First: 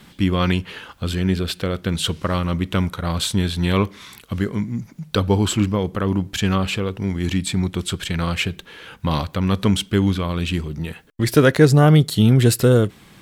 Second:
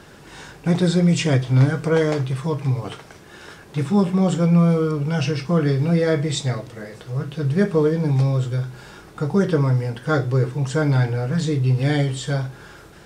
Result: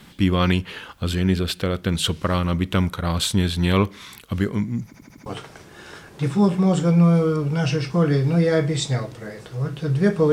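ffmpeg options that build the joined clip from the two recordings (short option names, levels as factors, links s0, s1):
-filter_complex "[0:a]apad=whole_dur=10.32,atrim=end=10.32,asplit=5[s0][s1][s2][s3][s4];[s0]atrim=end=4.942[s5];[s1]atrim=start=4.858:end=4.942[s6];[s2]atrim=start=4.858:end=4.942[s7];[s3]atrim=start=4.858:end=4.942[s8];[s4]atrim=start=4.858:end=4.942[s9];[1:a]atrim=start=2.808:end=7.87[s10];[s5][s6]acrossfade=d=0.004:c1=hsin:c2=hsin[s11];[s11][s7]acrossfade=d=0.004:c1=hsin:c2=hsin[s12];[s12][s8]acrossfade=d=0.004:c1=hsin:c2=hsin[s13];[s13][s9]acrossfade=d=0.004:c1=hsin:c2=hsin[s14];[s14][s10]acrossfade=d=0.004:c1=hsin:c2=hsin"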